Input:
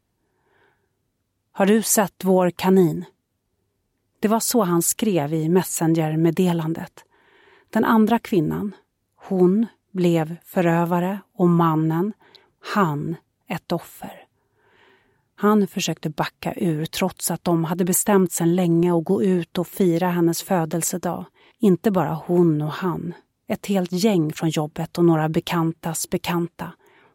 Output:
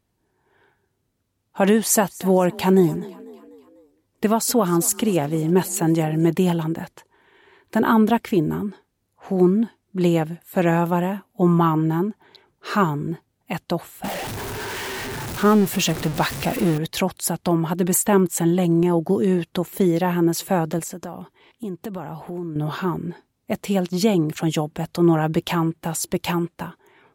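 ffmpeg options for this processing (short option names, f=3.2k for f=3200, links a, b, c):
-filter_complex "[0:a]asettb=1/sr,asplit=3[a][b][c];[a]atrim=end=1.774[d];[b]atrim=start=1.77:end=6.32,asetpts=PTS-STARTPTS,afade=t=in:d=0.004:c=qsin,afade=t=out:st=4.546:d=0.004:c=qsin,asplit=5[e][f][g][h][i];[f]adelay=248,afreqshift=33,volume=-21dB[j];[g]adelay=496,afreqshift=66,volume=-26.5dB[k];[h]adelay=744,afreqshift=99,volume=-32dB[l];[i]adelay=992,afreqshift=132,volume=-37.5dB[m];[e][j][k][l][m]amix=inputs=5:normalize=0,atrim=end_sample=200655[n];[c]atrim=start=6.316[o];[d][n]acrossfade=d=0.004:c1=hsin:c2=qsin[p];[p][o]acrossfade=d=0.004:c1=qsin:c2=hsin,asettb=1/sr,asplit=3[q][r][s];[q]atrim=end=14.044[t];[r]atrim=start=14.04:end=16.78,asetpts=PTS-STARTPTS,afade=t=in:d=0.004:c=qsin,afade=t=out:st=2.736:d=0.004:c=qsin,aeval=exprs='val(0)+0.5*0.0631*sgn(val(0))':c=same[u];[s]atrim=start=16.776[v];[t][u]acrossfade=d=0.004:c1=hsin:c2=qsin[w];[w][v]acrossfade=d=0.004:c1=qsin:c2=hsin,asettb=1/sr,asplit=3[x][y][z];[x]atrim=end=20.794[aa];[y]atrim=start=20.79:end=22.56,asetpts=PTS-STARTPTS,afade=t=in:d=0.004:c=qsin,afade=t=out:st=1.766:d=0.004:c=qsin,acompressor=threshold=-31dB:ratio=3:attack=3.2:release=140:knee=1:detection=peak[ab];[z]atrim=start=22.556[ac];[aa][ab]acrossfade=d=0.004:c1=hsin:c2=qsin[ad];[ad][ac]acrossfade=d=0.004:c1=qsin:c2=hsin"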